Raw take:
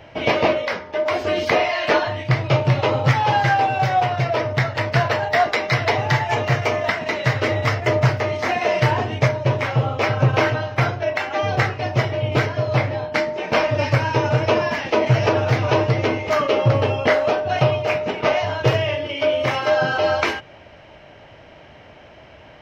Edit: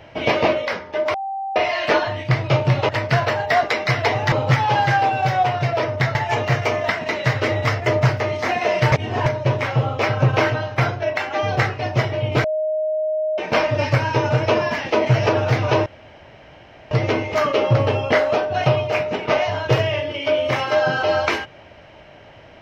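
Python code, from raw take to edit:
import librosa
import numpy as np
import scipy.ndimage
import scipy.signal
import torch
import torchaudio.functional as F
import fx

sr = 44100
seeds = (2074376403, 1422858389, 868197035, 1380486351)

y = fx.edit(x, sr, fx.bleep(start_s=1.14, length_s=0.42, hz=780.0, db=-23.5),
    fx.move(start_s=4.72, length_s=1.43, to_s=2.89),
    fx.reverse_span(start_s=8.92, length_s=0.34),
    fx.bleep(start_s=12.44, length_s=0.94, hz=622.0, db=-18.5),
    fx.insert_room_tone(at_s=15.86, length_s=1.05), tone=tone)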